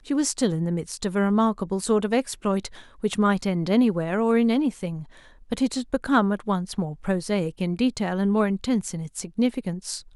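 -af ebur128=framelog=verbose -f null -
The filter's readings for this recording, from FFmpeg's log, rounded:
Integrated loudness:
  I:         -24.5 LUFS
  Threshold: -34.7 LUFS
Loudness range:
  LRA:         2.3 LU
  Threshold: -44.6 LUFS
  LRA low:   -25.9 LUFS
  LRA high:  -23.5 LUFS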